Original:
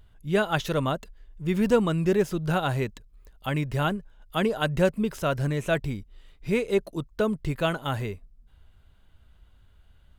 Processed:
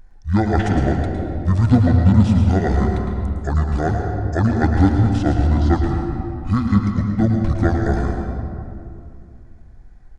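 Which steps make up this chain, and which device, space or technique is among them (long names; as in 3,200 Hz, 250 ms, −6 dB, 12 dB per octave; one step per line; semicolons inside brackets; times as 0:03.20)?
monster voice (pitch shifter −11.5 semitones; low-shelf EQ 110 Hz +6 dB; single-tap delay 108 ms −9 dB; convolution reverb RT60 2.5 s, pre-delay 108 ms, DRR 3.5 dB)
level +5 dB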